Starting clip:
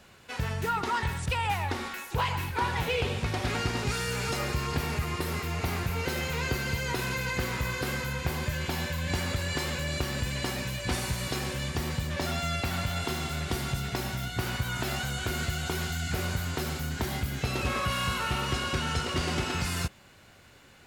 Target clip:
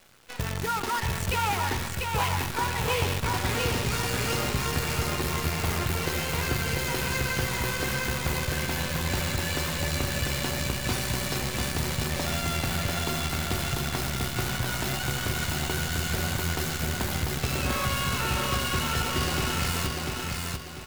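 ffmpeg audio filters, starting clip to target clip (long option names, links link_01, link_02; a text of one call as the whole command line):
ffmpeg -i in.wav -af "acrusher=bits=6:dc=4:mix=0:aa=0.000001,aecho=1:1:694|1388|2082|2776|3470:0.708|0.262|0.0969|0.0359|0.0133" out.wav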